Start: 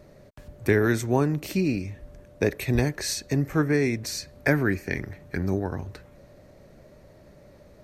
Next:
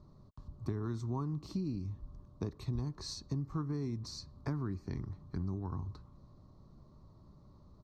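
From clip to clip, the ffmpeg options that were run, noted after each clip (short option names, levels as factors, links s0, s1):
-af "firequalizer=gain_entry='entry(110,0);entry(360,-8);entry(550,-19);entry(1100,3);entry(1600,-23);entry(2400,-25);entry(4100,-7);entry(11000,-29)':delay=0.05:min_phase=1,acompressor=threshold=0.0316:ratio=5,volume=0.708"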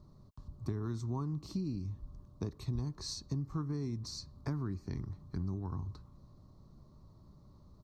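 -af "bass=f=250:g=2,treble=f=4000:g=5,volume=0.841"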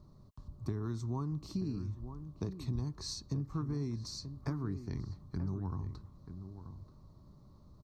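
-filter_complex "[0:a]asplit=2[s0][s1];[s1]adelay=932.9,volume=0.316,highshelf=f=4000:g=-21[s2];[s0][s2]amix=inputs=2:normalize=0"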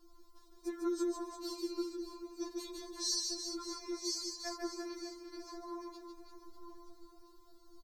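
-af "aemphasis=mode=production:type=cd,aecho=1:1:150|345|598.5|928|1356:0.631|0.398|0.251|0.158|0.1,afftfilt=real='re*4*eq(mod(b,16),0)':imag='im*4*eq(mod(b,16),0)':win_size=2048:overlap=0.75,volume=1.68"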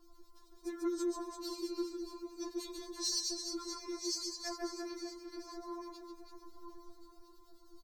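-filter_complex "[0:a]acrossover=split=1600[s0][s1];[s0]aeval=exprs='val(0)*(1-0.5/2+0.5/2*cos(2*PI*9.3*n/s))':c=same[s2];[s1]aeval=exprs='val(0)*(1-0.5/2-0.5/2*cos(2*PI*9.3*n/s))':c=same[s3];[s2][s3]amix=inputs=2:normalize=0,asoftclip=type=tanh:threshold=0.0376,volume=1.41"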